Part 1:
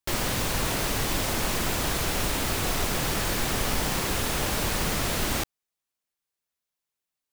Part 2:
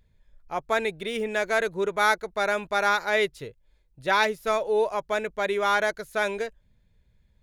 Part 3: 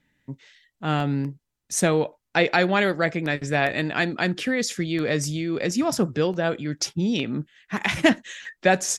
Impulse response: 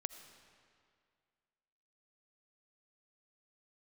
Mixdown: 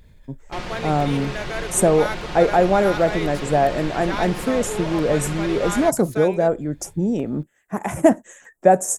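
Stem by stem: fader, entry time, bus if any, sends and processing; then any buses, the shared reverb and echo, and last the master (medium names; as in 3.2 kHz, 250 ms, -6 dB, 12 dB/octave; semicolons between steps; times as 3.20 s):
-3.5 dB, 0.45 s, no send, low-pass 3.7 kHz 12 dB/octave; comb 5.6 ms, depth 51%
-8.0 dB, 0.00 s, no send, level flattener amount 50%
+2.0 dB, 0.00 s, no send, FFT filter 240 Hz 0 dB, 700 Hz +6 dB, 4.2 kHz -26 dB, 7.8 kHz +5 dB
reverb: none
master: none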